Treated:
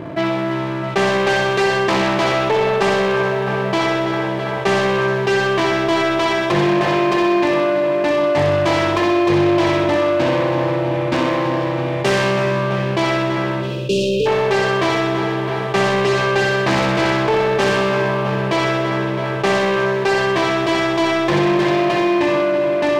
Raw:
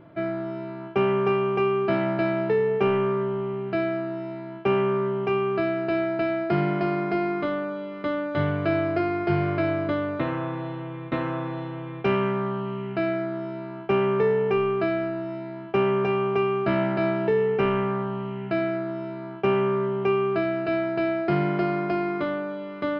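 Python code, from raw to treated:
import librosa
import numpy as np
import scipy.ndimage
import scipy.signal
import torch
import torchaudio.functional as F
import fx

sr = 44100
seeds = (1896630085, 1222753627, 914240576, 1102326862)

p1 = fx.self_delay(x, sr, depth_ms=0.63)
p2 = scipy.signal.sosfilt(scipy.signal.butter(2, 62.0, 'highpass', fs=sr, output='sos'), p1)
p3 = fx.notch(p2, sr, hz=1400.0, q=10.0)
p4 = p3 + fx.echo_filtered(p3, sr, ms=330, feedback_pct=80, hz=4300.0, wet_db=-12, dry=0)
p5 = fx.leveller(p4, sr, passes=1)
p6 = fx.spec_erase(p5, sr, start_s=13.61, length_s=0.65, low_hz=600.0, high_hz=2400.0)
p7 = fx.echo_feedback(p6, sr, ms=63, feedback_pct=59, wet_db=-5.5)
p8 = fx.env_flatten(p7, sr, amount_pct=50)
y = F.gain(torch.from_numpy(p8), 2.0).numpy()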